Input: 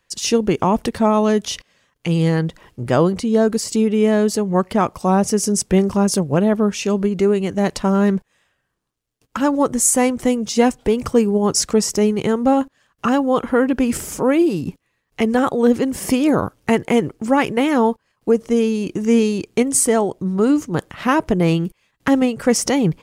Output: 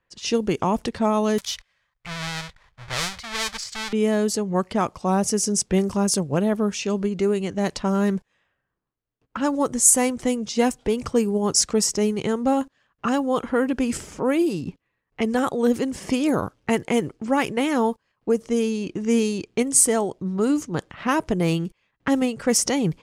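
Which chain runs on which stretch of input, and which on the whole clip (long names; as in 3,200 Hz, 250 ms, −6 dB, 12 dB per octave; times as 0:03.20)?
0:01.38–0:03.93: each half-wave held at its own peak + guitar amp tone stack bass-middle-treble 10-0-10 + notch filter 2,800 Hz, Q 13
whole clip: low-pass that shuts in the quiet parts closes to 1,800 Hz, open at −11 dBFS; high-shelf EQ 4,900 Hz +9.5 dB; level −5.5 dB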